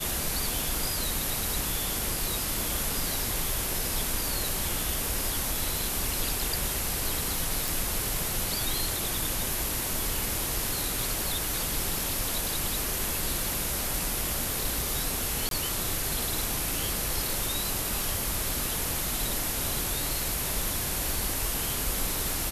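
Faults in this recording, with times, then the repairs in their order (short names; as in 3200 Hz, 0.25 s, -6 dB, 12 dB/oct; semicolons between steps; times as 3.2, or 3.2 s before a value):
7.68 pop
15.49–15.51 gap 22 ms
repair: de-click; interpolate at 15.49, 22 ms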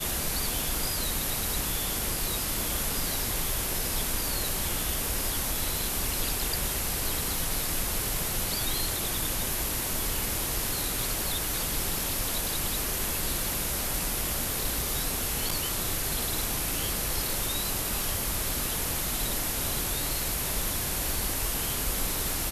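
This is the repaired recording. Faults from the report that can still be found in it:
none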